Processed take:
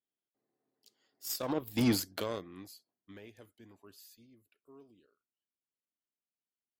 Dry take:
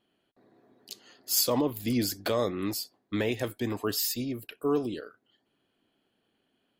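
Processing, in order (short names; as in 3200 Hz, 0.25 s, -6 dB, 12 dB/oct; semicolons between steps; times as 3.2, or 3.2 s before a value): Doppler pass-by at 1.86, 18 m/s, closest 3.6 m; added harmonics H 7 -22 dB, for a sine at -18 dBFS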